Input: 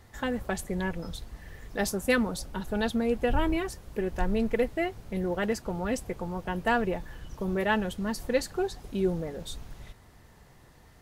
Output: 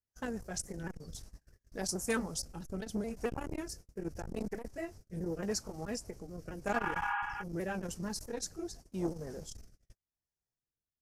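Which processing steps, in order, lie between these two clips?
repeated pitch sweeps -2.5 st, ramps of 0.217 s; resonant high shelf 4400 Hz +7 dB, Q 3; gate -41 dBFS, range -37 dB; spectral repair 6.77–7.4, 770–3400 Hz before; rotary speaker horn 6.7 Hz, later 0.85 Hz, at 0.51; core saturation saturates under 540 Hz; gain -4.5 dB

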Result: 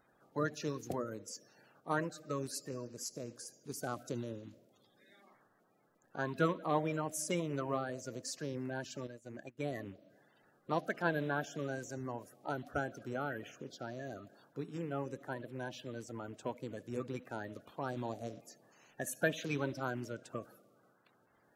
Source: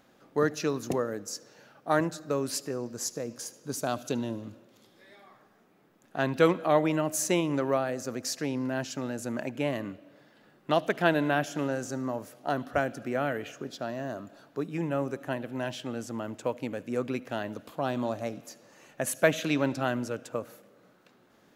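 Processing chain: bin magnitudes rounded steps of 30 dB; 9.07–9.61 upward expander 2.5:1, over -44 dBFS; gain -8.5 dB

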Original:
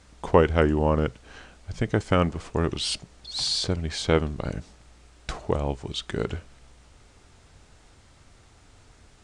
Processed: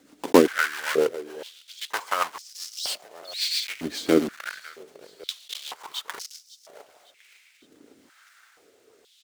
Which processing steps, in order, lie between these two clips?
block floating point 3-bit; rotary speaker horn 7.5 Hz, later 0.9 Hz, at 6.51; feedback echo 0.554 s, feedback 45%, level -18 dB; stepped high-pass 2.1 Hz 280–5300 Hz; gain -1 dB

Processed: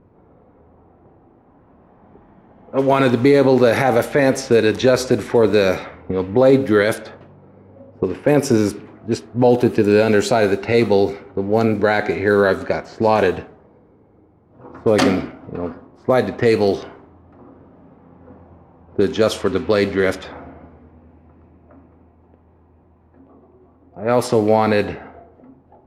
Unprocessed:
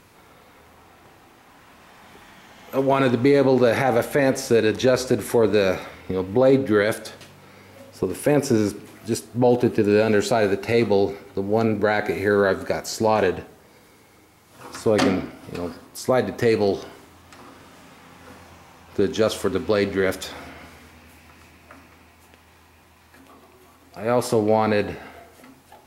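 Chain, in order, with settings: low-pass opened by the level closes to 540 Hz, open at -15.5 dBFS; gain +4 dB

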